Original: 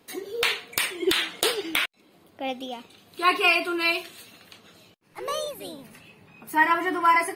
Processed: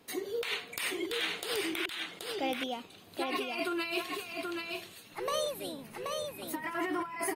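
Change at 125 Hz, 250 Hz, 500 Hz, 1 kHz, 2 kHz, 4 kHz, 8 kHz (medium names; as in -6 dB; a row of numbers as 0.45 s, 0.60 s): no reading, -5.0 dB, -5.0 dB, -13.0 dB, -11.5 dB, -8.5 dB, -7.0 dB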